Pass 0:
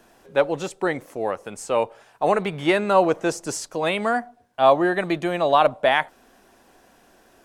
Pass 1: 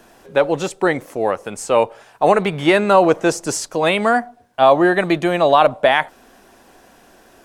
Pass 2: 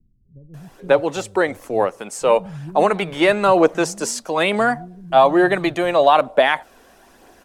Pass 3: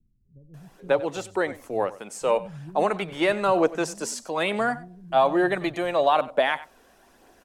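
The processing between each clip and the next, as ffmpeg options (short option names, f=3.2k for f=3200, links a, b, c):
-af "alimiter=level_in=7.5dB:limit=-1dB:release=50:level=0:latency=1,volume=-1dB"
-filter_complex "[0:a]acrossover=split=160[a][b];[b]adelay=540[c];[a][c]amix=inputs=2:normalize=0,aphaser=in_gain=1:out_gain=1:delay=2.2:decay=0.29:speed=1.1:type=triangular,volume=-1.5dB"
-af "aecho=1:1:95:0.126,volume=-7dB"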